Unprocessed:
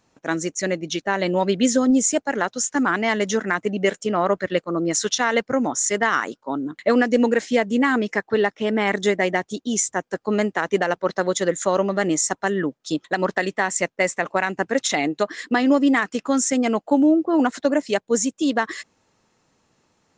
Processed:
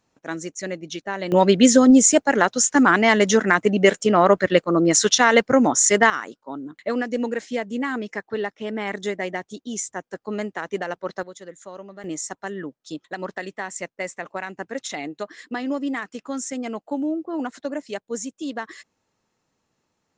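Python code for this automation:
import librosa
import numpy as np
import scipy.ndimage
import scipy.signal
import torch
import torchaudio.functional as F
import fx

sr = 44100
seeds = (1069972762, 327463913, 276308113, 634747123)

y = fx.gain(x, sr, db=fx.steps((0.0, -6.0), (1.32, 5.0), (6.1, -7.0), (11.23, -18.5), (12.04, -9.0)))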